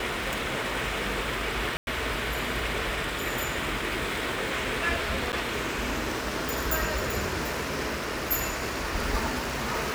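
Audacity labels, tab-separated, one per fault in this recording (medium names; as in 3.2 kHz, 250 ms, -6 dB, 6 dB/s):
1.770000	1.870000	dropout 101 ms
5.320000	5.330000	dropout 9 ms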